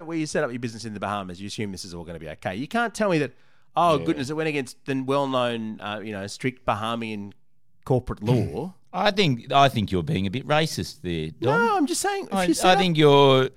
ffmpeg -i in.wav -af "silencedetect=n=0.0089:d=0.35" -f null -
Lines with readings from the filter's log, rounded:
silence_start: 3.30
silence_end: 3.76 | silence_duration: 0.46
silence_start: 7.32
silence_end: 7.87 | silence_duration: 0.55